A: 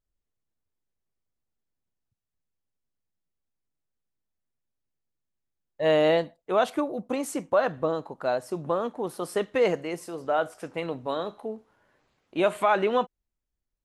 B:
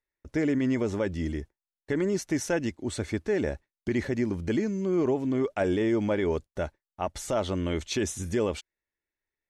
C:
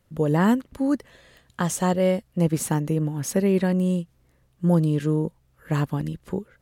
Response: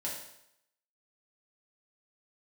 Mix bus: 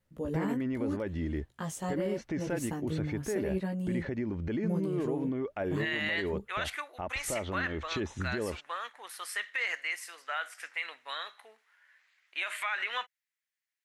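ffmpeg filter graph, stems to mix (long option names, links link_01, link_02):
-filter_complex "[0:a]highpass=frequency=1900:width_type=q:width=3.4,volume=0.5dB[link_01];[1:a]lowpass=2800,alimiter=level_in=3.5dB:limit=-24dB:level=0:latency=1:release=155,volume=-3.5dB,volume=2dB[link_02];[2:a]flanger=delay=15:depth=5.5:speed=0.8,volume=-9.5dB[link_03];[link_01][link_02][link_03]amix=inputs=3:normalize=0,alimiter=limit=-22.5dB:level=0:latency=1:release=51"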